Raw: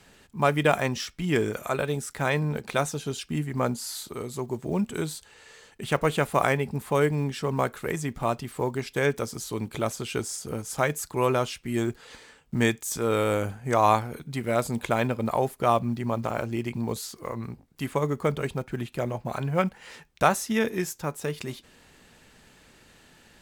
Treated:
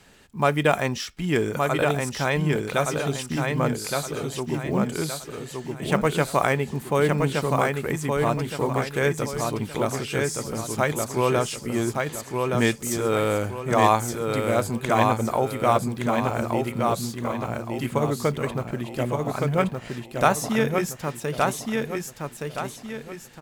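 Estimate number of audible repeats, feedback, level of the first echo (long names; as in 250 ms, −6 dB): 4, 38%, −3.5 dB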